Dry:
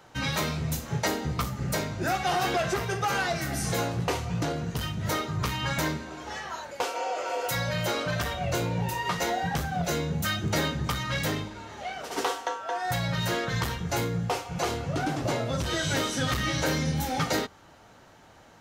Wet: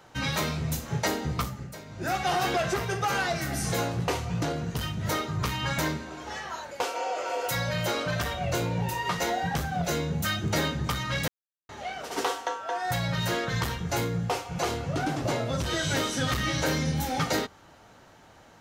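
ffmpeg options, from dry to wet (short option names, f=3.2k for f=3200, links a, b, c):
-filter_complex "[0:a]asplit=5[a][b][c][d][e];[a]atrim=end=1.72,asetpts=PTS-STARTPTS,afade=t=out:st=1.4:d=0.32:silence=0.199526[f];[b]atrim=start=1.72:end=1.85,asetpts=PTS-STARTPTS,volume=-14dB[g];[c]atrim=start=1.85:end=11.28,asetpts=PTS-STARTPTS,afade=t=in:d=0.32:silence=0.199526,afade=t=out:st=9.426:d=0.004:c=hsin[h];[d]atrim=start=11.28:end=11.69,asetpts=PTS-STARTPTS,volume=0[i];[e]atrim=start=11.69,asetpts=PTS-STARTPTS,afade=t=in:d=0.004:c=hsin[j];[f][g][h][i][j]concat=n=5:v=0:a=1"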